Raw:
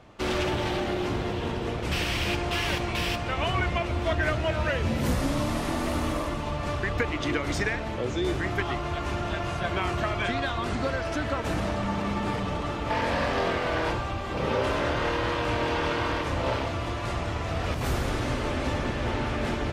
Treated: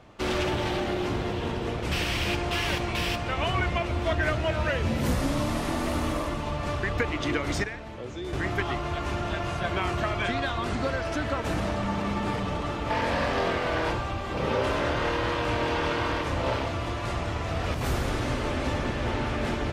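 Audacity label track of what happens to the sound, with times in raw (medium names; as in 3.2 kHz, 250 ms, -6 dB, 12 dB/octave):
7.640000	8.330000	gain -8 dB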